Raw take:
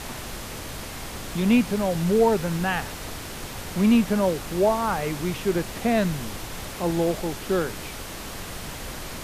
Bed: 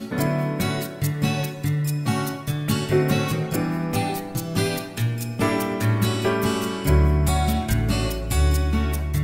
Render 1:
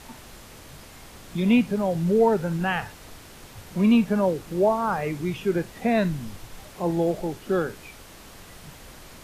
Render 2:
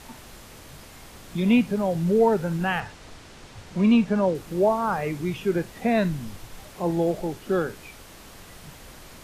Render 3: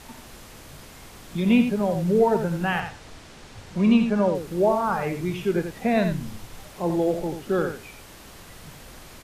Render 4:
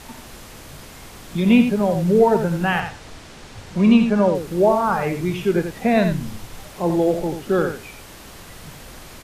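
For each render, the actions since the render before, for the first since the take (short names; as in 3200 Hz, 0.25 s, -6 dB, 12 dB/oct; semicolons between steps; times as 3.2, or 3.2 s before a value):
noise print and reduce 10 dB
2.8–4.35 LPF 7500 Hz
echo 87 ms -8 dB
gain +4.5 dB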